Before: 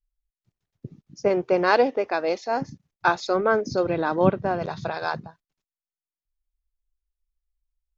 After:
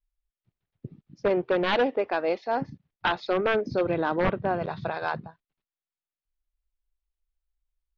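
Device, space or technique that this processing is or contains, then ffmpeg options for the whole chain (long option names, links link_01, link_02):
synthesiser wavefolder: -af "aeval=exprs='0.188*(abs(mod(val(0)/0.188+3,4)-2)-1)':channel_layout=same,lowpass=frequency=3800:width=0.5412,lowpass=frequency=3800:width=1.3066,volume=-1.5dB"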